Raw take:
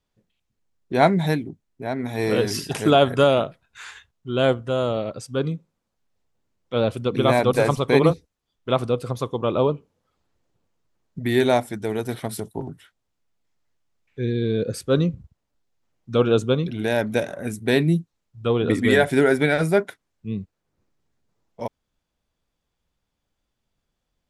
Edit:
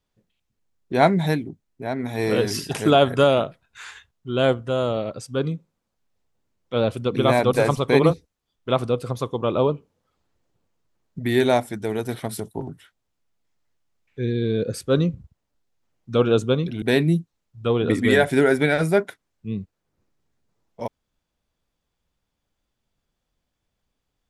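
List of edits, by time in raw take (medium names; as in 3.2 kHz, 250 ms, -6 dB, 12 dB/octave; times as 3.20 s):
16.82–17.62 s: delete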